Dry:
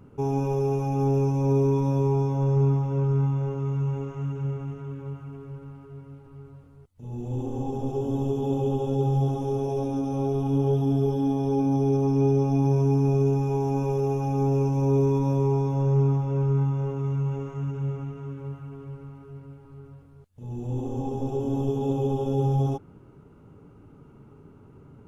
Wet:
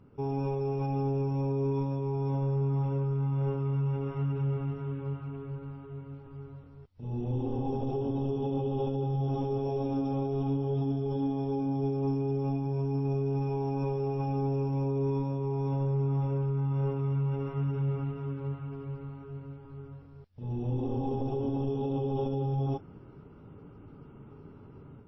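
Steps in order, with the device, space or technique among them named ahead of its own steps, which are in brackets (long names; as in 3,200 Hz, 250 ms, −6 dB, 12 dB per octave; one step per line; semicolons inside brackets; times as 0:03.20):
low-bitrate web radio (automatic gain control gain up to 7.5 dB; brickwall limiter −17 dBFS, peak gain reduction 11 dB; level −6.5 dB; MP3 24 kbit/s 16,000 Hz)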